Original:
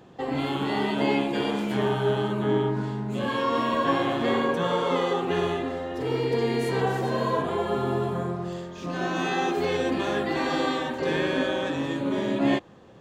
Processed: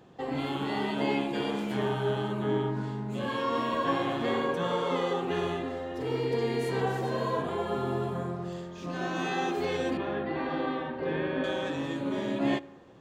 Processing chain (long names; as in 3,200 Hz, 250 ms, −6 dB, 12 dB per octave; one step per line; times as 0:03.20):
0:09.97–0:11.44: high-frequency loss of the air 360 metres
convolution reverb RT60 1.6 s, pre-delay 3 ms, DRR 18.5 dB
level −4.5 dB